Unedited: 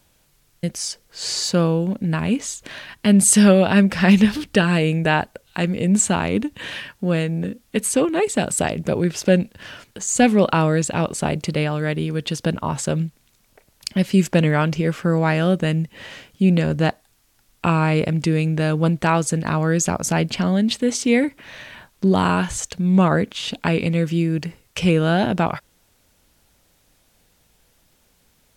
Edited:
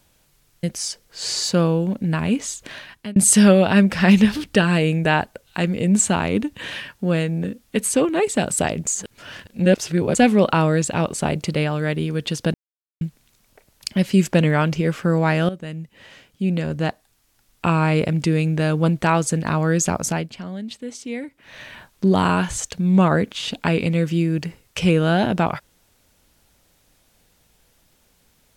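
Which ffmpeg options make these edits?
-filter_complex "[0:a]asplit=9[s0][s1][s2][s3][s4][s5][s6][s7][s8];[s0]atrim=end=3.16,asetpts=PTS-STARTPTS,afade=t=out:st=2.58:d=0.58:c=qsin[s9];[s1]atrim=start=3.16:end=8.872,asetpts=PTS-STARTPTS,afade=t=in:d=0.004:c=hsin[s10];[s2]atrim=start=8.868:end=10.152,asetpts=PTS-STARTPTS,areverse[s11];[s3]atrim=start=10.148:end=12.54,asetpts=PTS-STARTPTS,afade=t=out:st=2.388:d=0.004:c=hsin[s12];[s4]atrim=start=12.54:end=13.01,asetpts=PTS-STARTPTS,volume=0[s13];[s5]atrim=start=13.01:end=15.49,asetpts=PTS-STARTPTS,afade=t=in:d=0.004:c=hsin,afade=t=out:st=2.476:d=0.004:c=hsin:silence=0.199526[s14];[s6]atrim=start=15.49:end=20.29,asetpts=PTS-STARTPTS,afade=t=in:d=2.38:silence=0.199526,afade=t=out:st=4.55:d=0.25:silence=0.237137[s15];[s7]atrim=start=20.29:end=21.39,asetpts=PTS-STARTPTS,volume=0.237[s16];[s8]atrim=start=21.39,asetpts=PTS-STARTPTS,afade=t=in:d=0.25:silence=0.237137[s17];[s9][s10]concat=n=2:v=0:a=1[s18];[s18][s11]acrossfade=d=0.004:c1=hsin:c2=hsin[s19];[s12][s13][s14][s15][s16][s17]concat=n=6:v=0:a=1[s20];[s19][s20]acrossfade=d=0.004:c1=hsin:c2=hsin"

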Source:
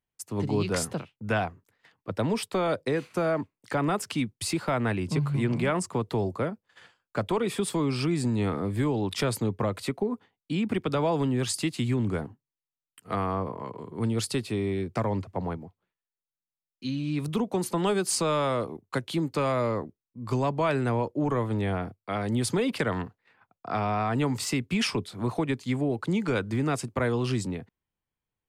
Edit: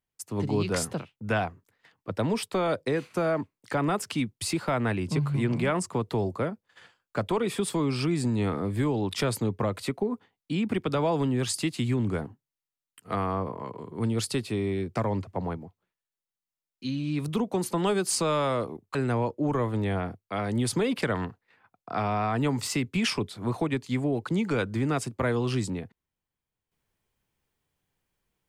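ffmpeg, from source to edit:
-filter_complex "[0:a]asplit=2[s0][s1];[s0]atrim=end=18.952[s2];[s1]atrim=start=20.718[s3];[s2][s3]acrossfade=d=0.004:c1=hsin:c2=hsin"

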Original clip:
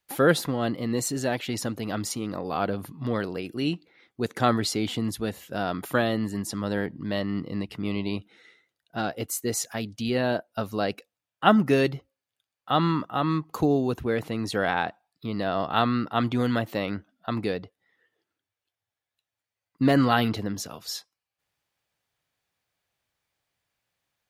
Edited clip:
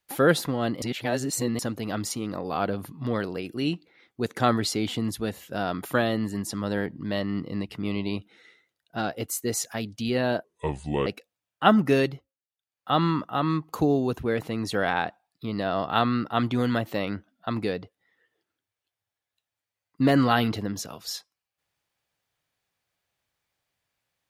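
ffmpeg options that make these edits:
-filter_complex "[0:a]asplit=7[s0][s1][s2][s3][s4][s5][s6];[s0]atrim=end=0.822[s7];[s1]atrim=start=0.818:end=1.592,asetpts=PTS-STARTPTS,areverse[s8];[s2]atrim=start=1.588:end=10.444[s9];[s3]atrim=start=10.44:end=10.87,asetpts=PTS-STARTPTS,asetrate=30429,aresample=44100[s10];[s4]atrim=start=10.866:end=12.13,asetpts=PTS-STARTPTS,afade=t=out:st=0.934:d=0.33:silence=0.177828[s11];[s5]atrim=start=12.13:end=12.4,asetpts=PTS-STARTPTS,volume=0.178[s12];[s6]atrim=start=12.4,asetpts=PTS-STARTPTS,afade=t=in:d=0.33:silence=0.177828[s13];[s7][s8]acrossfade=d=0.004:c1=hsin:c2=hsin[s14];[s14][s9]acrossfade=d=0.004:c1=hsin:c2=hsin[s15];[s15][s10]acrossfade=d=0.004:c1=hsin:c2=hsin[s16];[s11][s12][s13]concat=n=3:v=0:a=1[s17];[s16][s17]acrossfade=d=0.004:c1=hsin:c2=hsin"

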